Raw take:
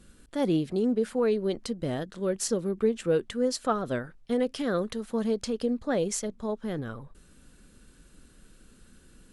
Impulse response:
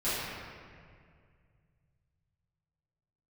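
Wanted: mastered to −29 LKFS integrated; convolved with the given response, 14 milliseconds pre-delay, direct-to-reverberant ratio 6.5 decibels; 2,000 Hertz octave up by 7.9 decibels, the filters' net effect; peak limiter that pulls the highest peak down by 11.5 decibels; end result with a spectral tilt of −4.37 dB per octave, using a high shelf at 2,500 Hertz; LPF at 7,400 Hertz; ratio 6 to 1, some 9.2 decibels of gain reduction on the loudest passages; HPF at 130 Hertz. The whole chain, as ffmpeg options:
-filter_complex "[0:a]highpass=130,lowpass=7400,equalizer=frequency=2000:width_type=o:gain=8,highshelf=frequency=2500:gain=5.5,acompressor=threshold=-30dB:ratio=6,alimiter=level_in=5dB:limit=-24dB:level=0:latency=1,volume=-5dB,asplit=2[link_01][link_02];[1:a]atrim=start_sample=2205,adelay=14[link_03];[link_02][link_03]afir=irnorm=-1:irlink=0,volume=-16.5dB[link_04];[link_01][link_04]amix=inputs=2:normalize=0,volume=8.5dB"

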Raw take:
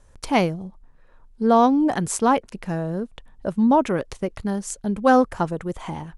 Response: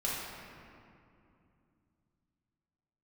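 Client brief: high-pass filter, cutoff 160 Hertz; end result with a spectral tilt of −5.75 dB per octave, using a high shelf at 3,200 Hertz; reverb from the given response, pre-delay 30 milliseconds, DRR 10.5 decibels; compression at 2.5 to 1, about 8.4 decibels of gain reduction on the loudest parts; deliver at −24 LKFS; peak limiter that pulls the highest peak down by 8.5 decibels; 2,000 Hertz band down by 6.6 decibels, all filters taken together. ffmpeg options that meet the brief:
-filter_complex "[0:a]highpass=160,equalizer=frequency=2000:width_type=o:gain=-7,highshelf=frequency=3200:gain=-7,acompressor=threshold=-25dB:ratio=2.5,alimiter=limit=-22dB:level=0:latency=1,asplit=2[link_01][link_02];[1:a]atrim=start_sample=2205,adelay=30[link_03];[link_02][link_03]afir=irnorm=-1:irlink=0,volume=-16.5dB[link_04];[link_01][link_04]amix=inputs=2:normalize=0,volume=7.5dB"

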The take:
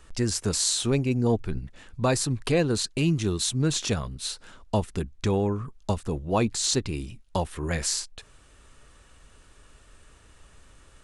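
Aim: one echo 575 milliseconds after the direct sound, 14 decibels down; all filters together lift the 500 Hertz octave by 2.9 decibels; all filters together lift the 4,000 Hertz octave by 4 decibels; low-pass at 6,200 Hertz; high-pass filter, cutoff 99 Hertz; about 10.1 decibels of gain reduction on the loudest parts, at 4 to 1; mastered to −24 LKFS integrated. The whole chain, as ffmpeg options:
ffmpeg -i in.wav -af "highpass=99,lowpass=6200,equalizer=frequency=500:width_type=o:gain=3.5,equalizer=frequency=4000:width_type=o:gain=5.5,acompressor=threshold=-29dB:ratio=4,aecho=1:1:575:0.2,volume=8.5dB" out.wav

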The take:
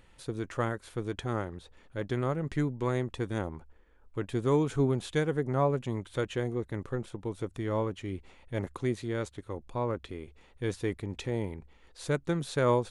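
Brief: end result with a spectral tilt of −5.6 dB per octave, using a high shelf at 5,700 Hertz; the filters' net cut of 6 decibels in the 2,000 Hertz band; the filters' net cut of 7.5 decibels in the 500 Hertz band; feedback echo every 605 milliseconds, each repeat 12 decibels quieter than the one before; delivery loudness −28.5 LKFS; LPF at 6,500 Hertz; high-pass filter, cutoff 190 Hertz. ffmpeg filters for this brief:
ffmpeg -i in.wav -af "highpass=190,lowpass=6500,equalizer=frequency=500:width_type=o:gain=-9,equalizer=frequency=2000:width_type=o:gain=-8.5,highshelf=frequency=5700:gain=9,aecho=1:1:605|1210|1815:0.251|0.0628|0.0157,volume=10dB" out.wav

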